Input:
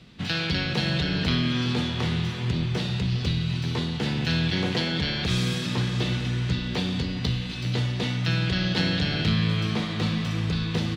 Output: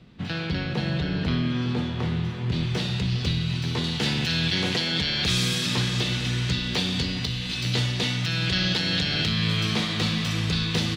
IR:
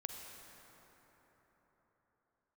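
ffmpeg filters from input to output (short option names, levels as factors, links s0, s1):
-af "asetnsamples=n=441:p=0,asendcmd='2.52 highshelf g 3.5;3.84 highshelf g 10',highshelf=f=2200:g=-9.5,alimiter=limit=0.237:level=0:latency=1:release=278"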